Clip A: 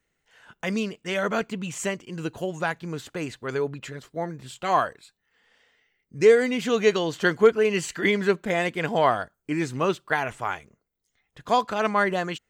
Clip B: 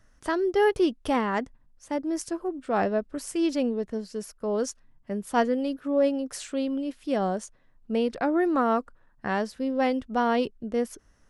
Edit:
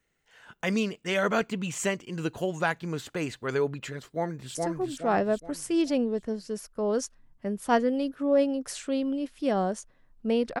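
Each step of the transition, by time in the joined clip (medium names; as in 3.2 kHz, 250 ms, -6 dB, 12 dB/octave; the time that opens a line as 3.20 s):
clip A
4.15–4.55 s: echo throw 420 ms, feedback 40%, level -1.5 dB
4.55 s: go over to clip B from 2.20 s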